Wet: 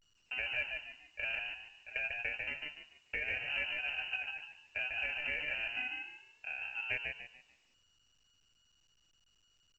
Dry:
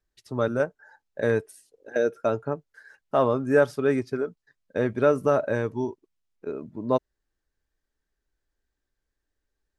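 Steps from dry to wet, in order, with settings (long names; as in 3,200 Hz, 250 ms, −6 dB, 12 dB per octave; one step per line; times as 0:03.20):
low-pass that shuts in the quiet parts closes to 320 Hz, open at −21.5 dBFS
noise gate −55 dBFS, range −13 dB
comb filter 5.8 ms, depth 89%
downward compressor 3 to 1, threshold −35 dBFS, peak gain reduction 16 dB
decimation without filtering 25×
echo with shifted repeats 146 ms, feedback 32%, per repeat −45 Hz, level −3.5 dB
convolution reverb RT60 0.60 s, pre-delay 40 ms, DRR 19 dB
voice inversion scrambler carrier 2,900 Hz
level −4.5 dB
A-law companding 128 kbit/s 16,000 Hz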